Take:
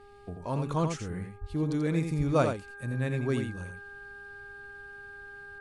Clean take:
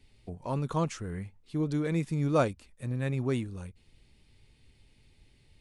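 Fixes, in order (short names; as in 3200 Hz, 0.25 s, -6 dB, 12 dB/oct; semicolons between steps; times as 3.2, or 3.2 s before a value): de-hum 405.1 Hz, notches 4; notch 1600 Hz, Q 30; de-plosive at 1.4/2.17; inverse comb 86 ms -6.5 dB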